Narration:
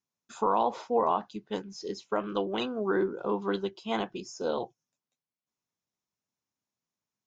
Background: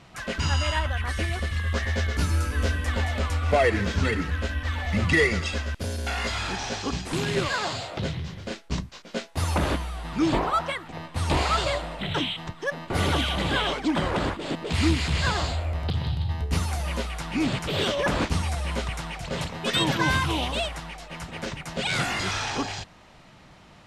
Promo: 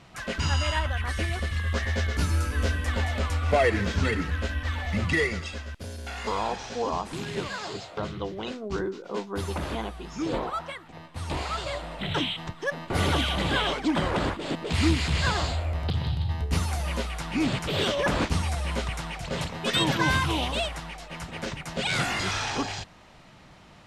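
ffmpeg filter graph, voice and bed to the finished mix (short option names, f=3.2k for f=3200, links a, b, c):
-filter_complex "[0:a]adelay=5850,volume=-3.5dB[a];[1:a]volume=6dB,afade=t=out:st=4.67:d=0.89:silence=0.473151,afade=t=in:st=11.64:d=0.45:silence=0.446684[b];[a][b]amix=inputs=2:normalize=0"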